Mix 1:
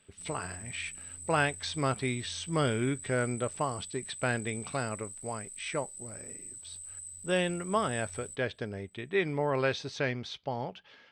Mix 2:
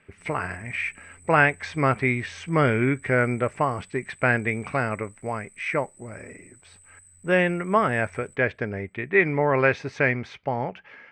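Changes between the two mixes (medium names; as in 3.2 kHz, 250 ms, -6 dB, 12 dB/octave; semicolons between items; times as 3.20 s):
speech +7.5 dB; master: add resonant high shelf 2.8 kHz -8.5 dB, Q 3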